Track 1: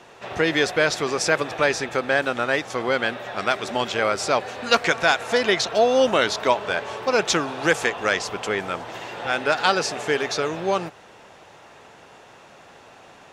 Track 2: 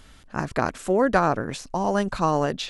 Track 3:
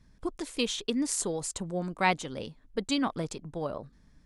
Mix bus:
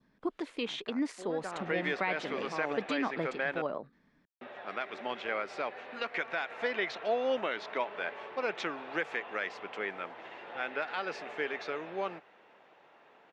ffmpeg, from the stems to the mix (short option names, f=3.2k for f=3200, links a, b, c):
-filter_complex "[0:a]adelay=1300,volume=-12.5dB,asplit=3[a][b][c];[a]atrim=end=3.62,asetpts=PTS-STARTPTS,afade=t=out:st=3.616:d=0.004:c=hsin[d];[b]atrim=start=3.62:end=4.41,asetpts=PTS-STARTPTS,volume=0[e];[c]atrim=start=4.41,asetpts=PTS-STARTPTS,afade=t=in:d=0.004:c=hsin[f];[d][e][f]concat=n=3:v=0:a=1[g];[1:a]highshelf=f=3.9k:g=10,adelay=300,volume=-13dB[h];[2:a]volume=0dB,asplit=2[i][j];[j]apad=whole_len=132100[k];[h][k]sidechaincompress=threshold=-38dB:ratio=8:attack=20:release=448[l];[g][i]amix=inputs=2:normalize=0,adynamicequalizer=threshold=0.00398:dfrequency=2100:dqfactor=2.1:tfrequency=2100:tqfactor=2.1:attack=5:release=100:ratio=0.375:range=3:mode=boostabove:tftype=bell,alimiter=limit=-19.5dB:level=0:latency=1:release=140,volume=0dB[m];[l][m]amix=inputs=2:normalize=0,acrossover=split=180 3700:gain=0.0708 1 0.0708[n][o][p];[n][o][p]amix=inputs=3:normalize=0"